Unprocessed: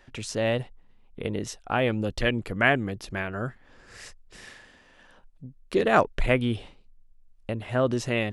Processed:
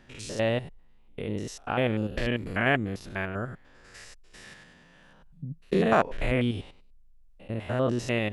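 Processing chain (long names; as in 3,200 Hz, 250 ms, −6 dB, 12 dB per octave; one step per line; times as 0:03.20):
spectrum averaged block by block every 100 ms
0:04.46–0:05.93: parametric band 160 Hz +14 dB 0.66 octaves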